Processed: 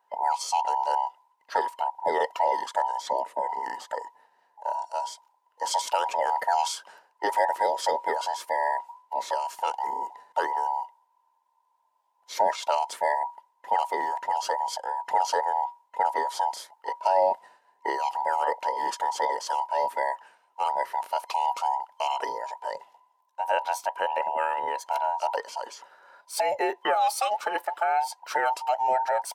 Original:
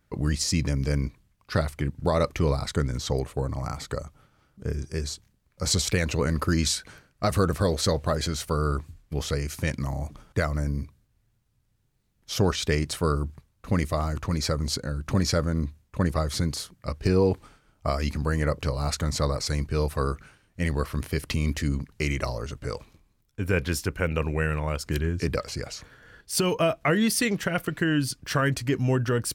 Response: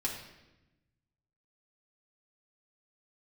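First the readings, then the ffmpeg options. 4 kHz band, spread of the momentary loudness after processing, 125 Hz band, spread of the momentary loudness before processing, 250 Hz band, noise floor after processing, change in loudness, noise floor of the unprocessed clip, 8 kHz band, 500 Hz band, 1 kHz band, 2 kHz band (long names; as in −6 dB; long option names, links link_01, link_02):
−5.5 dB, 10 LU, below −40 dB, 10 LU, −19.5 dB, −70 dBFS, −1.0 dB, −69 dBFS, −6.5 dB, −1.5 dB, +11.5 dB, −2.0 dB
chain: -af "afftfilt=real='real(if(between(b,1,1008),(2*floor((b-1)/48)+1)*48-b,b),0)':imag='imag(if(between(b,1,1008),(2*floor((b-1)/48)+1)*48-b,b),0)*if(between(b,1,1008),-1,1)':win_size=2048:overlap=0.75,highpass=670,tiltshelf=frequency=970:gain=7"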